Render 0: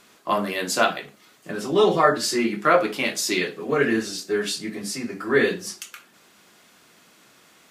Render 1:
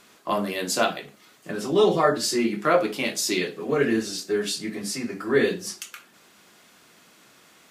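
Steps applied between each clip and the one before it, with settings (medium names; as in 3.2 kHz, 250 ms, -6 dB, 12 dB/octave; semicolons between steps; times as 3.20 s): dynamic bell 1.5 kHz, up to -5 dB, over -35 dBFS, Q 0.75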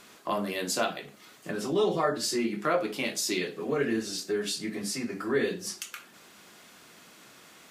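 compression 1.5:1, threshold -39 dBFS, peak gain reduction 9 dB; trim +1.5 dB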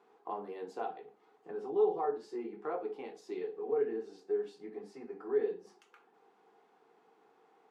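two resonant band-passes 590 Hz, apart 0.81 oct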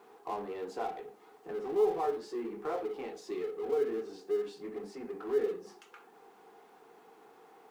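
companding laws mixed up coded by mu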